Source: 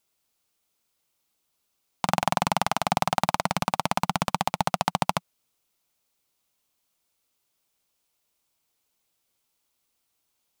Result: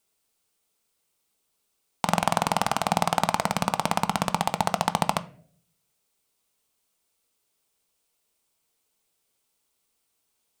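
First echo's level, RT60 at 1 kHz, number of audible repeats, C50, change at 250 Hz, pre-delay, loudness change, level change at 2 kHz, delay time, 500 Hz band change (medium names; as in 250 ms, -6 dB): no echo, 0.45 s, no echo, 18.5 dB, +1.5 dB, 4 ms, +0.5 dB, +0.5 dB, no echo, +1.5 dB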